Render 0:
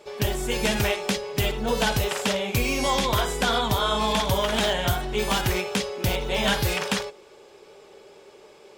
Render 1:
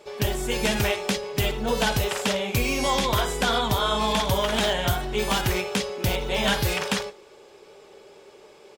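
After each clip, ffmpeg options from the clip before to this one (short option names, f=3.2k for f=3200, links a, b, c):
-filter_complex "[0:a]asplit=2[a][b];[b]adelay=139.9,volume=-28dB,highshelf=f=4k:g=-3.15[c];[a][c]amix=inputs=2:normalize=0"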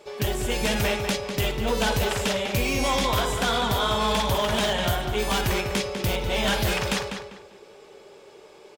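-filter_complex "[0:a]asoftclip=type=hard:threshold=-19dB,asplit=2[a][b];[b]adelay=198,lowpass=f=4.1k:p=1,volume=-6.5dB,asplit=2[c][d];[d]adelay=198,lowpass=f=4.1k:p=1,volume=0.28,asplit=2[e][f];[f]adelay=198,lowpass=f=4.1k:p=1,volume=0.28,asplit=2[g][h];[h]adelay=198,lowpass=f=4.1k:p=1,volume=0.28[i];[a][c][e][g][i]amix=inputs=5:normalize=0"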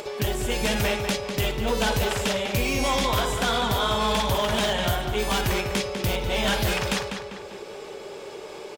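-af "acompressor=mode=upward:threshold=-27dB:ratio=2.5"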